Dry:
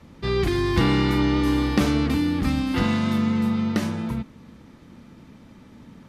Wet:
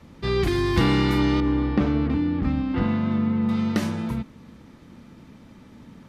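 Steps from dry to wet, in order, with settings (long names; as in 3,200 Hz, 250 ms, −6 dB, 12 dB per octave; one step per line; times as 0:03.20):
0:01.40–0:03.49: head-to-tape spacing loss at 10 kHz 33 dB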